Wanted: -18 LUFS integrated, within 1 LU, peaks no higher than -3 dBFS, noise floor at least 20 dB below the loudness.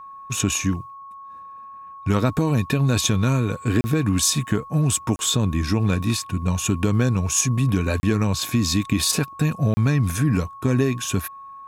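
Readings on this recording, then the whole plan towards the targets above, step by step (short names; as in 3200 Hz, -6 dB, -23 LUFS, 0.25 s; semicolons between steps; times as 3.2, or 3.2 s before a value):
dropouts 4; longest dropout 30 ms; steady tone 1100 Hz; tone level -37 dBFS; loudness -21.5 LUFS; peak -5.0 dBFS; loudness target -18.0 LUFS
-> interpolate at 3.81/5.16/8/9.74, 30 ms; notch 1100 Hz, Q 30; gain +3.5 dB; limiter -3 dBFS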